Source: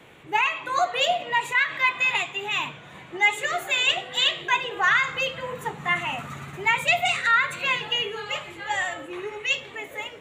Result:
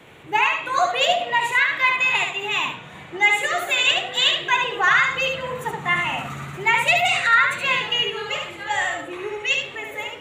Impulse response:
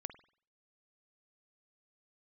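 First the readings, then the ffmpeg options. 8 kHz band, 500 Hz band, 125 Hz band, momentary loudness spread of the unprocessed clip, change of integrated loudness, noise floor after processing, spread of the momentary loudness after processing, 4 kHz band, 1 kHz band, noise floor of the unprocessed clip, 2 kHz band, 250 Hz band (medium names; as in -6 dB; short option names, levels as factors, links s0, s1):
+3.5 dB, +4.0 dB, +4.0 dB, 12 LU, +4.0 dB, -40 dBFS, 11 LU, +4.0 dB, +4.0 dB, -45 dBFS, +4.0 dB, +3.5 dB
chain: -filter_complex "[0:a]asplit=2[s0][s1];[1:a]atrim=start_sample=2205,adelay=72[s2];[s1][s2]afir=irnorm=-1:irlink=0,volume=0.891[s3];[s0][s3]amix=inputs=2:normalize=0,volume=1.33"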